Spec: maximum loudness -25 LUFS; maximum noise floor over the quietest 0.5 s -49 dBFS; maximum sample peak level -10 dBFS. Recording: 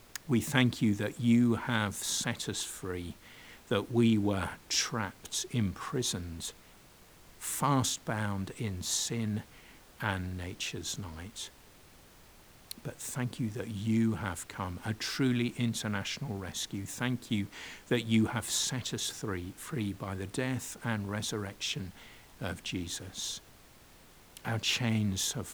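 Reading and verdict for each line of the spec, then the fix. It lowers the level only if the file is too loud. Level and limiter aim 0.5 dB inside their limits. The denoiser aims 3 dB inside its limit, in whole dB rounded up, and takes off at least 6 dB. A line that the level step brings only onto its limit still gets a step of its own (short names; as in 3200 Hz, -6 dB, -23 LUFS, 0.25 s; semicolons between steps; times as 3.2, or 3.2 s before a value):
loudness -33.0 LUFS: OK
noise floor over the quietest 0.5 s -57 dBFS: OK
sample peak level -8.0 dBFS: fail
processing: limiter -10.5 dBFS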